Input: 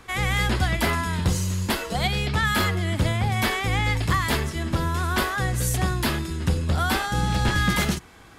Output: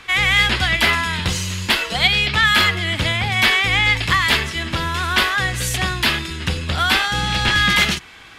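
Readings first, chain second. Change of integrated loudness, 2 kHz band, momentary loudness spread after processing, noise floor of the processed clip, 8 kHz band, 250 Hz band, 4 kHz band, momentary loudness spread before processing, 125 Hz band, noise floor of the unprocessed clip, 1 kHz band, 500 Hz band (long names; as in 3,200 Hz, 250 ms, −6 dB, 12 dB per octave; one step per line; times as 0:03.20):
+7.0 dB, +10.5 dB, 8 LU, −42 dBFS, +4.0 dB, −0.5 dB, +12.5 dB, 4 LU, −1.0 dB, −48 dBFS, +4.5 dB, +1.0 dB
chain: parametric band 2,800 Hz +15 dB 2.2 octaves
level −1 dB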